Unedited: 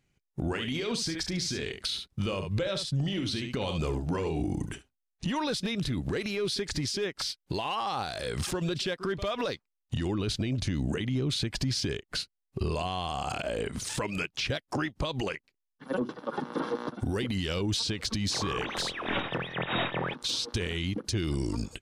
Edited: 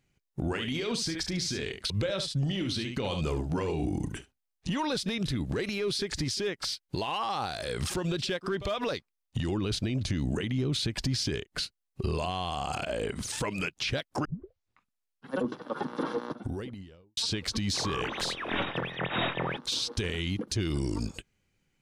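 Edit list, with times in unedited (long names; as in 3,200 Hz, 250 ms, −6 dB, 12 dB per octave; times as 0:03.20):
0:01.90–0:02.47: remove
0:14.82: tape start 1.07 s
0:16.60–0:17.74: fade out and dull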